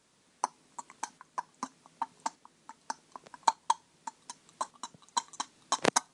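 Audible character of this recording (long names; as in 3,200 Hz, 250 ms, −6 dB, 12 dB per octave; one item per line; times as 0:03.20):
a quantiser's noise floor 12 bits, dither triangular
tremolo saw up 0.85 Hz, depth 45%
AAC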